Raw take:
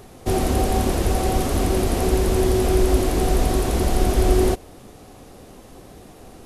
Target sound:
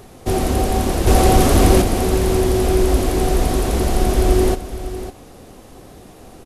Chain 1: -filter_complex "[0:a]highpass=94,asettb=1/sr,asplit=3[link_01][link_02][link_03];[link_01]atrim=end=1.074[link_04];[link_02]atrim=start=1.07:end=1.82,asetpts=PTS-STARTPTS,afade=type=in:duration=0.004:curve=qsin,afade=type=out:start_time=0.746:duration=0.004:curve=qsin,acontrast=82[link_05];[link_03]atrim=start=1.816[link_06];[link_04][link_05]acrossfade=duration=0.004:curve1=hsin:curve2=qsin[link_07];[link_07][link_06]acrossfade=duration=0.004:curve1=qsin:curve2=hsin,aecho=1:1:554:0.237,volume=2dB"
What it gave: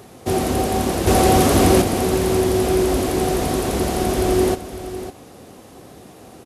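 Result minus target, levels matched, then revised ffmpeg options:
125 Hz band −3.0 dB
-filter_complex "[0:a]asettb=1/sr,asplit=3[link_01][link_02][link_03];[link_01]atrim=end=1.074[link_04];[link_02]atrim=start=1.07:end=1.82,asetpts=PTS-STARTPTS,afade=type=in:duration=0.004:curve=qsin,afade=type=out:start_time=0.746:duration=0.004:curve=qsin,acontrast=82[link_05];[link_03]atrim=start=1.816[link_06];[link_04][link_05]acrossfade=duration=0.004:curve1=hsin:curve2=qsin[link_07];[link_07][link_06]acrossfade=duration=0.004:curve1=qsin:curve2=hsin,aecho=1:1:554:0.237,volume=2dB"

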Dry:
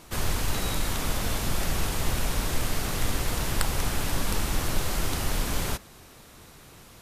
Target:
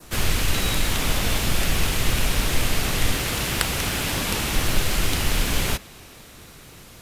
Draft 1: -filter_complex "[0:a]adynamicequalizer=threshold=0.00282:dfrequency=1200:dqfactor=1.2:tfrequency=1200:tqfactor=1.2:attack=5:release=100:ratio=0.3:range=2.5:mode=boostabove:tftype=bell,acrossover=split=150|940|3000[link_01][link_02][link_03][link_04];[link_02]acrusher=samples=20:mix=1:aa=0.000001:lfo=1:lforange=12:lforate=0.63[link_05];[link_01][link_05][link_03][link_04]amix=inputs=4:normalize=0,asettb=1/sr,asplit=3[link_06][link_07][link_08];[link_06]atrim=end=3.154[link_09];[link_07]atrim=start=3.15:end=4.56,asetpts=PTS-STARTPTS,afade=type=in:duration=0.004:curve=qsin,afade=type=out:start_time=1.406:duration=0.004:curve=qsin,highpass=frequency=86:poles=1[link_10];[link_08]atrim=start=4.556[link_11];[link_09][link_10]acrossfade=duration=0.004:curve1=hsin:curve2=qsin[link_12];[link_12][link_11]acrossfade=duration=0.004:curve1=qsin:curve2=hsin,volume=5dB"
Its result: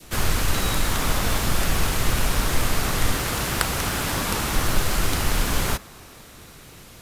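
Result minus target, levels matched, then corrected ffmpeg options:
1,000 Hz band +3.5 dB
-filter_complex "[0:a]adynamicequalizer=threshold=0.00282:dfrequency=2700:dqfactor=1.2:tfrequency=2700:tqfactor=1.2:attack=5:release=100:ratio=0.3:range=2.5:mode=boostabove:tftype=bell,acrossover=split=150|940|3000[link_01][link_02][link_03][link_04];[link_02]acrusher=samples=20:mix=1:aa=0.000001:lfo=1:lforange=12:lforate=0.63[link_05];[link_01][link_05][link_03][link_04]amix=inputs=4:normalize=0,asettb=1/sr,asplit=3[link_06][link_07][link_08];[link_06]atrim=end=3.154[link_09];[link_07]atrim=start=3.15:end=4.56,asetpts=PTS-STARTPTS,afade=type=in:duration=0.004:curve=qsin,afade=type=out:start_time=1.406:duration=0.004:curve=qsin,highpass=frequency=86:poles=1[link_10];[link_08]atrim=start=4.556[link_11];[link_09][link_10]acrossfade=duration=0.004:curve1=hsin:curve2=qsin[link_12];[link_12][link_11]acrossfade=duration=0.004:curve1=qsin:curve2=hsin,volume=5dB"

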